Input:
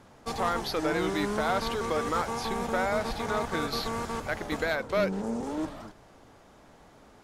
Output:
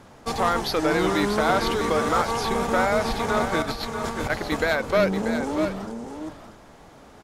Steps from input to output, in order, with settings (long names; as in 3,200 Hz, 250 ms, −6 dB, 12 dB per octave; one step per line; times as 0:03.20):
0:03.62–0:04.30: compressor whose output falls as the input rises −36 dBFS, ratio −0.5
on a send: single-tap delay 636 ms −8.5 dB
on the sum: level +6 dB